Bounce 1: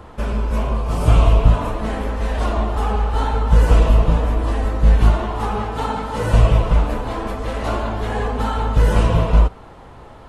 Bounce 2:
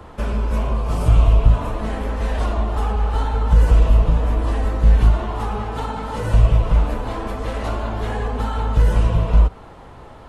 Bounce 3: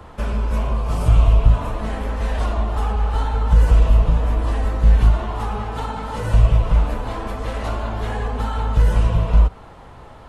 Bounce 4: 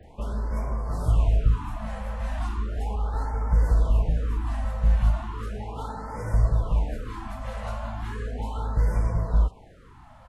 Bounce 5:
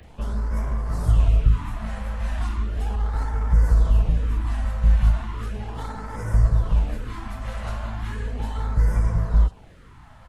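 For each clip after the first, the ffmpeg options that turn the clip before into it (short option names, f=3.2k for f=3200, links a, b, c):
-filter_complex "[0:a]acrossover=split=130[a][b];[b]acompressor=threshold=-24dB:ratio=6[c];[a][c]amix=inputs=2:normalize=0"
-af "equalizer=f=340:w=1.1:g=-3"
-filter_complex "[0:a]acrossover=split=3400[a][b];[b]adelay=30[c];[a][c]amix=inputs=2:normalize=0,afftfilt=real='re*(1-between(b*sr/1024,320*pow(3400/320,0.5+0.5*sin(2*PI*0.36*pts/sr))/1.41,320*pow(3400/320,0.5+0.5*sin(2*PI*0.36*pts/sr))*1.41))':imag='im*(1-between(b*sr/1024,320*pow(3400/320,0.5+0.5*sin(2*PI*0.36*pts/sr))/1.41,320*pow(3400/320,0.5+0.5*sin(2*PI*0.36*pts/sr))*1.41))':win_size=1024:overlap=0.75,volume=-7.5dB"
-filter_complex "[0:a]acrossover=split=280|1300[a][b][c];[b]aeval=exprs='max(val(0),0)':c=same[d];[c]acompressor=mode=upward:threshold=-60dB:ratio=2.5[e];[a][d][e]amix=inputs=3:normalize=0,volume=3.5dB"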